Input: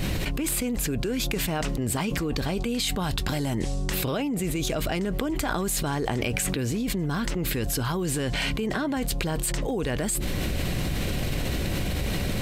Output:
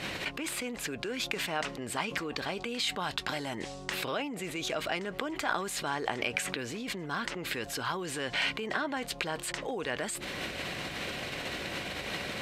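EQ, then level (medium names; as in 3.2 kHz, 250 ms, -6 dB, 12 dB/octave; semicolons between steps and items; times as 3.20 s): band-pass filter 1.7 kHz, Q 0.53; 0.0 dB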